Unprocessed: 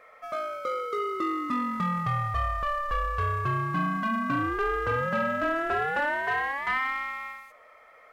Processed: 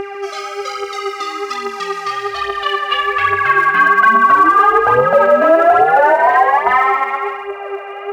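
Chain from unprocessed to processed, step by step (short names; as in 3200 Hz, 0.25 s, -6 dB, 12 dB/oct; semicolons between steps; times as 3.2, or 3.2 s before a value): band-pass sweep 5300 Hz -> 710 Hz, 2.04–5.03; buzz 400 Hz, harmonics 7, -51 dBFS -7 dB/oct; phaser 1.2 Hz, delay 4.3 ms, feedback 63%; band-limited delay 0.147 s, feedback 64%, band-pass 540 Hz, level -15 dB; maximiser +24.5 dB; gain -1 dB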